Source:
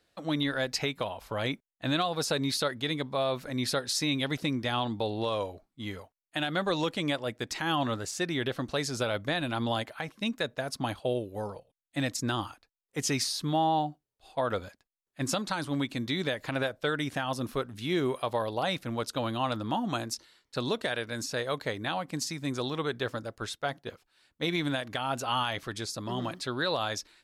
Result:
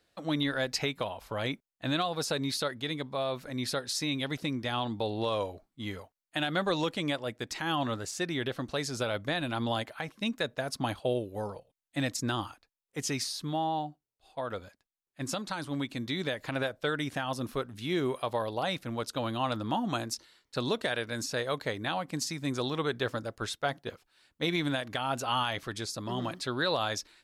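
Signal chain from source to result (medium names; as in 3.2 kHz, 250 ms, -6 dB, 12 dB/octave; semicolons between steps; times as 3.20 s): gain riding within 5 dB 2 s; trim -1.5 dB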